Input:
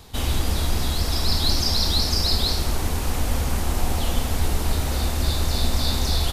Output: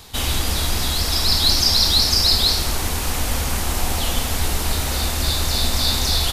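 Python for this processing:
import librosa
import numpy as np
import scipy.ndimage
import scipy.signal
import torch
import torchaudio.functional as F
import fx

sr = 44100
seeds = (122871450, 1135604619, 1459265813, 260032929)

y = fx.tilt_shelf(x, sr, db=-4.0, hz=970.0)
y = F.gain(torch.from_numpy(y), 3.5).numpy()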